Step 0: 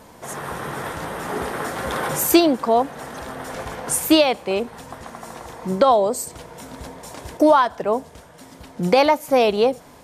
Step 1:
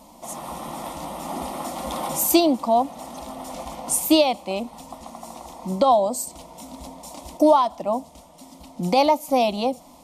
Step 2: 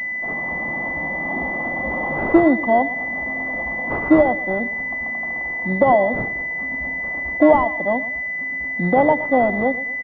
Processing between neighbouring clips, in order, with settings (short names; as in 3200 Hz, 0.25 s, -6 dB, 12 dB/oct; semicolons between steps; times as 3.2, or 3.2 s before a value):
fixed phaser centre 430 Hz, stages 6
feedback echo 0.119 s, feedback 38%, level -15.5 dB; pulse-width modulation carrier 2000 Hz; gain +4 dB